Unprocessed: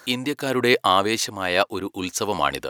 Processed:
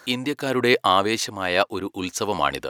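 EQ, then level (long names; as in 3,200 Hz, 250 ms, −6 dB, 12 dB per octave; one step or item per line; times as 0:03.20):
high-shelf EQ 7,200 Hz −5 dB
0.0 dB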